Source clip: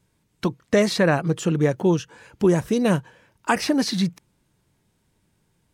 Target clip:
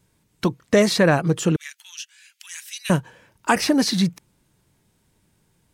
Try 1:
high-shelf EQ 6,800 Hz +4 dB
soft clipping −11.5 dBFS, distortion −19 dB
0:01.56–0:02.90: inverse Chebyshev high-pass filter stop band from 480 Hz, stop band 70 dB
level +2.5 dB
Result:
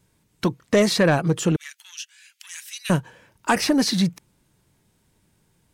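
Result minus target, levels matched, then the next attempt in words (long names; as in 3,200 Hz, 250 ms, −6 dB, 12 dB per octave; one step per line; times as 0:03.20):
soft clipping: distortion +12 dB
high-shelf EQ 6,800 Hz +4 dB
soft clipping −4 dBFS, distortion −31 dB
0:01.56–0:02.90: inverse Chebyshev high-pass filter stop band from 480 Hz, stop band 70 dB
level +2.5 dB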